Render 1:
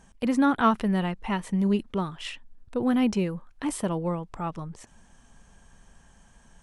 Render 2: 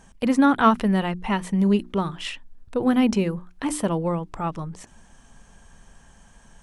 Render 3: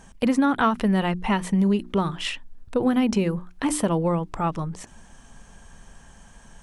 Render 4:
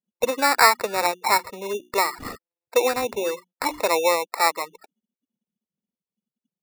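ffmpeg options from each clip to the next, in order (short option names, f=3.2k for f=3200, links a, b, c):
-af "bandreject=f=60:t=h:w=6,bandreject=f=120:t=h:w=6,bandreject=f=180:t=h:w=6,bandreject=f=240:t=h:w=6,bandreject=f=300:t=h:w=6,bandreject=f=360:t=h:w=6,volume=4.5dB"
-af "acompressor=threshold=-20dB:ratio=6,volume=3dB"
-af "afftfilt=real='re*gte(hypot(re,im),0.0178)':imag='im*gte(hypot(re,im),0.0178)':win_size=1024:overlap=0.75,highpass=f=430:w=0.5412,highpass=f=430:w=1.3066,equalizer=f=500:t=q:w=4:g=4,equalizer=f=920:t=q:w=4:g=6,equalizer=f=1.3k:t=q:w=4:g=4,equalizer=f=2.6k:t=q:w=4:g=-9,lowpass=f=2.9k:w=0.5412,lowpass=f=2.9k:w=1.3066,acrusher=samples=14:mix=1:aa=0.000001,volume=3dB"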